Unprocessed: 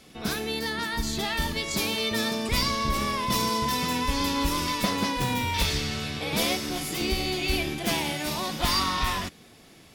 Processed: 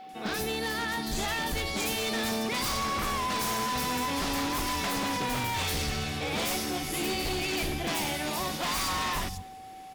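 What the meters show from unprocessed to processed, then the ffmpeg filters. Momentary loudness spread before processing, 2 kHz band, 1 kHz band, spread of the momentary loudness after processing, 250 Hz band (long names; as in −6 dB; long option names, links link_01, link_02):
4 LU, −2.0 dB, −2.0 dB, 3 LU, −4.0 dB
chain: -filter_complex "[0:a]acrossover=split=160|4500[link_01][link_02][link_03];[link_03]adelay=90[link_04];[link_01]adelay=130[link_05];[link_05][link_02][link_04]amix=inputs=3:normalize=0,aeval=exprs='0.0562*(abs(mod(val(0)/0.0562+3,4)-2)-1)':channel_layout=same,asplit=2[link_06][link_07];[link_07]aecho=0:1:208:0.0668[link_08];[link_06][link_08]amix=inputs=2:normalize=0,aeval=exprs='val(0)+0.00708*sin(2*PI*760*n/s)':channel_layout=same,acrusher=bits=8:mode=log:mix=0:aa=0.000001"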